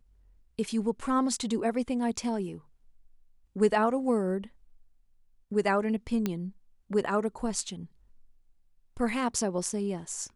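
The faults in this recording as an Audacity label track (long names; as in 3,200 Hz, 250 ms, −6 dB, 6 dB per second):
6.260000	6.260000	click −15 dBFS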